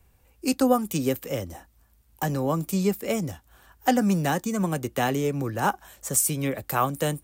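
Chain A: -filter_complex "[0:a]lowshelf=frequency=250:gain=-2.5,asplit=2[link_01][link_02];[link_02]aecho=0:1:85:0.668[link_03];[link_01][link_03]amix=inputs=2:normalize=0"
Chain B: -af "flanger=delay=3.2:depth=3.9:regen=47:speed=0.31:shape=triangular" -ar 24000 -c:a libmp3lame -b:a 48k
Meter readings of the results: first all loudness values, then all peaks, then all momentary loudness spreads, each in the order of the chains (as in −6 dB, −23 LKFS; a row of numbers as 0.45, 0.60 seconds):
−25.0, −30.5 LKFS; −8.5, −12.5 dBFS; 10, 9 LU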